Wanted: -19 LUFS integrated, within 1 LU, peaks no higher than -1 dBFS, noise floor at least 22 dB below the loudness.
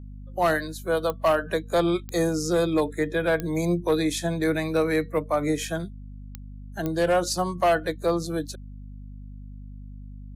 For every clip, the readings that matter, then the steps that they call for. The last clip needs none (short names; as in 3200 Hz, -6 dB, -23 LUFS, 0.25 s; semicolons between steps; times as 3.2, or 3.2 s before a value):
clicks 5; hum 50 Hz; harmonics up to 250 Hz; hum level -37 dBFS; loudness -25.0 LUFS; peak -12.5 dBFS; loudness target -19.0 LUFS
-> de-click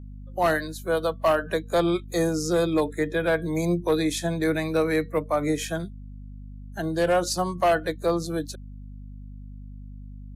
clicks 0; hum 50 Hz; harmonics up to 250 Hz; hum level -38 dBFS
-> de-hum 50 Hz, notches 5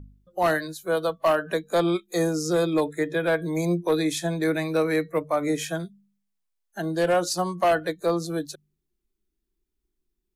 hum none; loudness -25.0 LUFS; peak -12.0 dBFS; loudness target -19.0 LUFS
-> gain +6 dB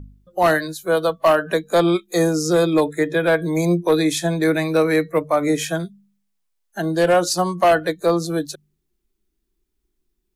loudness -19.0 LUFS; peak -6.0 dBFS; noise floor -73 dBFS